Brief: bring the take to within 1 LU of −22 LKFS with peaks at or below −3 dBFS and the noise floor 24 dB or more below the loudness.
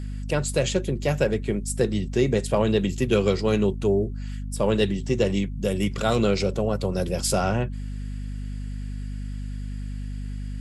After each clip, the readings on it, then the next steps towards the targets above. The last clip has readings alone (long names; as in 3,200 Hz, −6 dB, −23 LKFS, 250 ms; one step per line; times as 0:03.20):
mains hum 50 Hz; hum harmonics up to 250 Hz; level of the hum −29 dBFS; integrated loudness −25.5 LKFS; sample peak −7.5 dBFS; target loudness −22.0 LKFS
→ hum removal 50 Hz, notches 5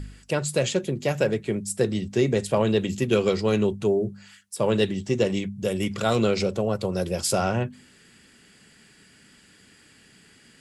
mains hum none found; integrated loudness −25.0 LKFS; sample peak −7.5 dBFS; target loudness −22.0 LKFS
→ level +3 dB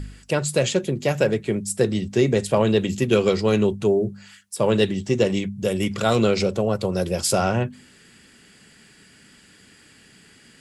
integrated loudness −22.0 LKFS; sample peak −4.5 dBFS; background noise floor −52 dBFS